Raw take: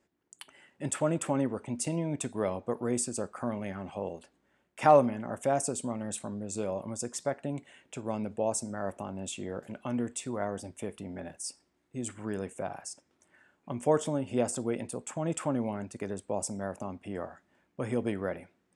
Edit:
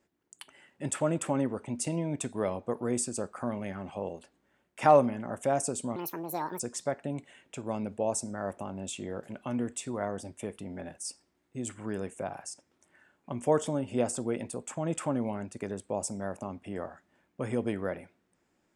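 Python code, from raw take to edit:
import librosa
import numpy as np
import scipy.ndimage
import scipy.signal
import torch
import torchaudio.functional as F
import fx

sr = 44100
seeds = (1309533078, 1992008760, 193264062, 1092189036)

y = fx.edit(x, sr, fx.speed_span(start_s=5.96, length_s=1.03, speed=1.62), tone=tone)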